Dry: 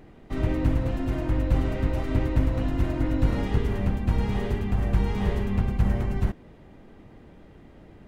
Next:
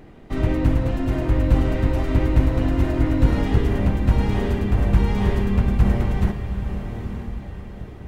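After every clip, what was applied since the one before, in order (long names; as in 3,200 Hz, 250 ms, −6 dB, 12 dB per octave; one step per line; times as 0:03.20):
feedback delay with all-pass diffusion 910 ms, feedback 43%, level −8.5 dB
level +4.5 dB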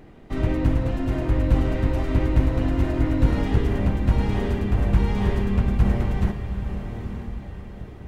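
highs frequency-modulated by the lows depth 0.13 ms
level −2 dB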